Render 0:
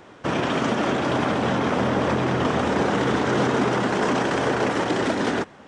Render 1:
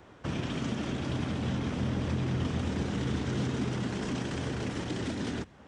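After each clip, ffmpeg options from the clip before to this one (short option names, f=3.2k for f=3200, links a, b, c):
-filter_complex "[0:a]equalizer=f=60:w=0.72:g=13.5,acrossover=split=310|2300[a][b][c];[b]acompressor=threshold=-34dB:ratio=5[d];[a][d][c]amix=inputs=3:normalize=0,volume=-8.5dB"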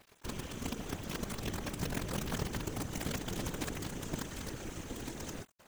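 -af "superequalizer=8b=0.631:15b=2.82:16b=2.51,acrusher=bits=5:dc=4:mix=0:aa=0.000001,afftfilt=real='hypot(re,im)*cos(2*PI*random(0))':imag='hypot(re,im)*sin(2*PI*random(1))':win_size=512:overlap=0.75,volume=1dB"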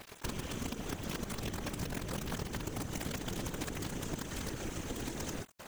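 -af "acompressor=threshold=-48dB:ratio=5,volume=11.5dB"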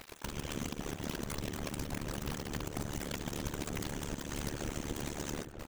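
-filter_complex "[0:a]alimiter=level_in=4dB:limit=-24dB:level=0:latency=1:release=82,volume=-4dB,tremolo=f=73:d=0.974,asplit=2[a][b];[b]adelay=932.9,volume=-8dB,highshelf=f=4k:g=-21[c];[a][c]amix=inputs=2:normalize=0,volume=5dB"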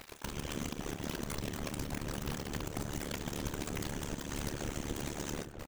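-filter_complex "[0:a]asplit=2[a][b];[b]adelay=30,volume=-13.5dB[c];[a][c]amix=inputs=2:normalize=0"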